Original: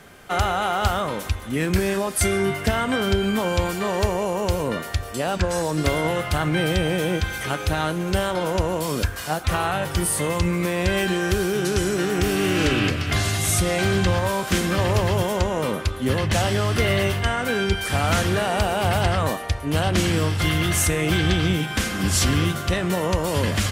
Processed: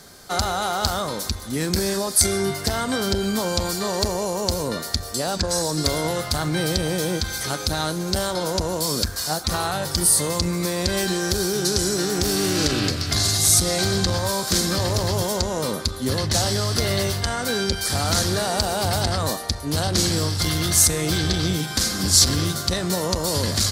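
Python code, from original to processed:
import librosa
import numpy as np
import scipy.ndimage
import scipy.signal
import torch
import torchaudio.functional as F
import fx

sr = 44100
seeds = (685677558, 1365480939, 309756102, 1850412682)

y = fx.high_shelf_res(x, sr, hz=3500.0, db=7.5, q=3.0)
y = fx.transformer_sat(y, sr, knee_hz=570.0)
y = y * librosa.db_to_amplitude(-1.0)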